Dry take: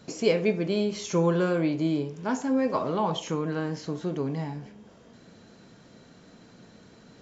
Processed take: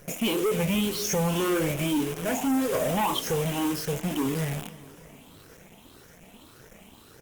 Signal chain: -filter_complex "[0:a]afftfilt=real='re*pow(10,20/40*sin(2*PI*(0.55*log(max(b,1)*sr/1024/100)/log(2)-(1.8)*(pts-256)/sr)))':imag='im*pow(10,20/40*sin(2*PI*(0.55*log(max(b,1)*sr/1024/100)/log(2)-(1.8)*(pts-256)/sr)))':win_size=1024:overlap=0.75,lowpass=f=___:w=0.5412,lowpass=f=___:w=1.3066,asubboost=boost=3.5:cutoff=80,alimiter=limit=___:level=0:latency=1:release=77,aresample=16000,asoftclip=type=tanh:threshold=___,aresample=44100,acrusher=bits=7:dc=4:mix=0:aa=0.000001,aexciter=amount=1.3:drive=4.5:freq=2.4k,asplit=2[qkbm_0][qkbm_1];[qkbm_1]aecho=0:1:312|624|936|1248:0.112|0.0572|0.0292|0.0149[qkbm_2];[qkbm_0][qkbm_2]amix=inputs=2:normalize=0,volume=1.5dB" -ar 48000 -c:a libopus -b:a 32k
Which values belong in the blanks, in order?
6.2k, 6.2k, -13.5dB, -22.5dB